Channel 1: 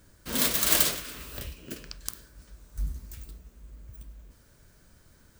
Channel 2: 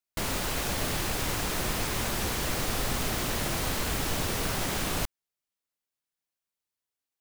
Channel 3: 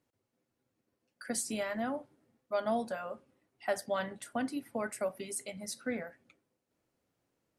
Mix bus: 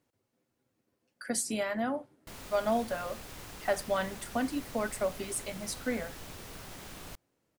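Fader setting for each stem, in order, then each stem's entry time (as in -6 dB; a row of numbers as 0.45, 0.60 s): off, -16.0 dB, +3.0 dB; off, 2.10 s, 0.00 s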